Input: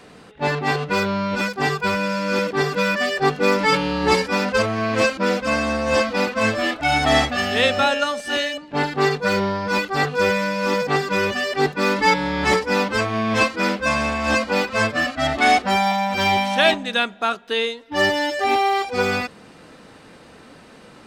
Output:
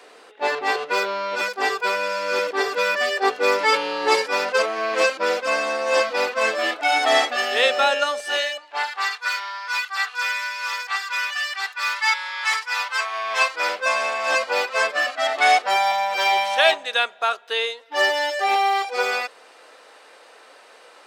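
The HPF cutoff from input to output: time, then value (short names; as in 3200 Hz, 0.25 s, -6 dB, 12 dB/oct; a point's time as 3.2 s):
HPF 24 dB/oct
8.17 s 390 Hz
9.15 s 1100 Hz
12.67 s 1100 Hz
13.87 s 480 Hz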